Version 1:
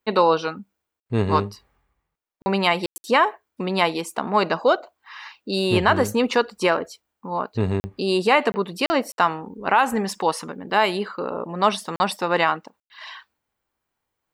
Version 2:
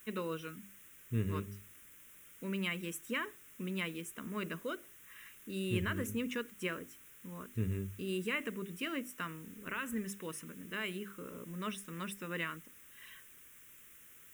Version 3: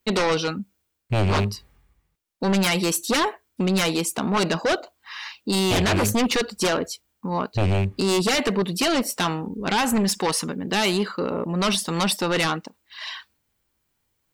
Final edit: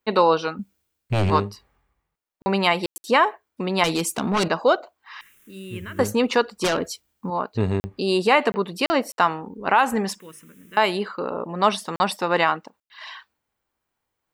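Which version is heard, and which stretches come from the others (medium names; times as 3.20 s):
1
0.59–1.30 s: from 3
3.84–4.48 s: from 3
5.21–5.99 s: from 2
6.64–7.30 s: from 3
10.20–10.77 s: from 2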